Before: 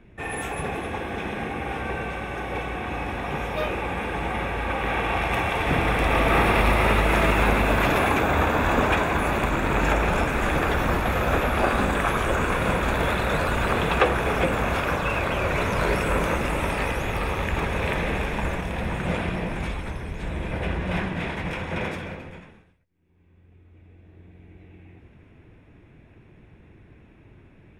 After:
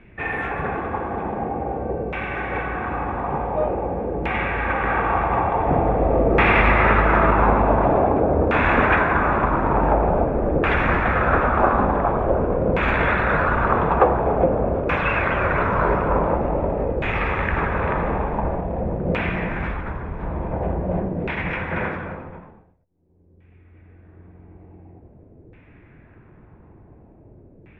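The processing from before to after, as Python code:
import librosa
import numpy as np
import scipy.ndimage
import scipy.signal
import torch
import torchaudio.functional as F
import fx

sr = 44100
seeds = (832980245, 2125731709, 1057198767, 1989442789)

y = fx.filter_lfo_lowpass(x, sr, shape='saw_down', hz=0.47, low_hz=480.0, high_hz=2500.0, q=1.8)
y = y * 10.0 ** (2.5 / 20.0)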